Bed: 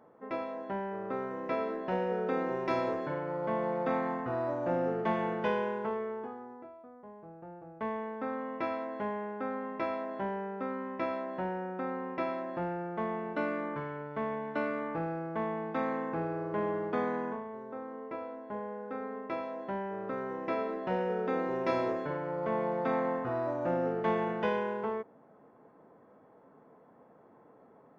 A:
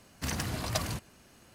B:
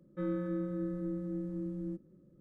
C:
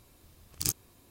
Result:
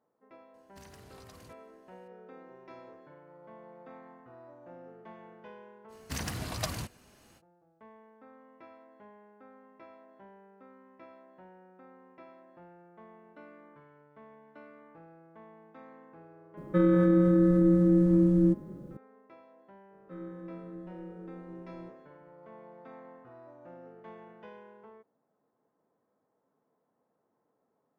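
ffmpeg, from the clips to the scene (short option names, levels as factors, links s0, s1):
-filter_complex "[1:a]asplit=2[s0][s1];[2:a]asplit=2[s2][s3];[0:a]volume=0.112[s4];[s0]acompressor=threshold=0.0126:ratio=6:attack=38:release=28:knee=1:detection=rms[s5];[s2]alimiter=level_in=33.5:limit=0.891:release=50:level=0:latency=1[s6];[s5]atrim=end=1.54,asetpts=PTS-STARTPTS,volume=0.133,afade=t=in:d=0.004:c=hsin,afade=t=out:st=1.536:d=0.004:c=hsin,adelay=540[s7];[s1]atrim=end=1.54,asetpts=PTS-STARTPTS,volume=0.75,afade=t=in:d=0.05,afade=t=out:st=1.49:d=0.05,adelay=5880[s8];[s6]atrim=end=2.4,asetpts=PTS-STARTPTS,volume=0.188,afade=t=in:d=0.004:c=hsin,afade=t=out:st=2.396:d=0.004:c=hsin,adelay=16570[s9];[s3]atrim=end=2.4,asetpts=PTS-STARTPTS,volume=0.376,afade=t=in:d=0.004:c=hsin,afade=t=out:st=2.396:d=0.004:c=hsin,adelay=19930[s10];[s4][s7][s8][s9][s10]amix=inputs=5:normalize=0"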